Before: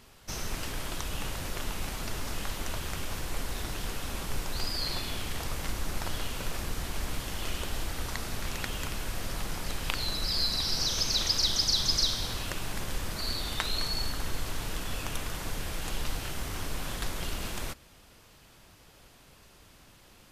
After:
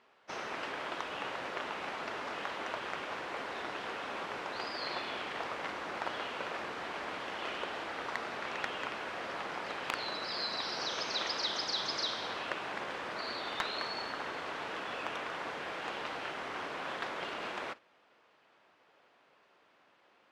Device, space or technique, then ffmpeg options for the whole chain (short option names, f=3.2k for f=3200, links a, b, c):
walkie-talkie: -af "highpass=450,lowpass=2.2k,asoftclip=type=hard:threshold=-25dB,agate=range=-8dB:threshold=-50dB:ratio=16:detection=peak,volume=4dB"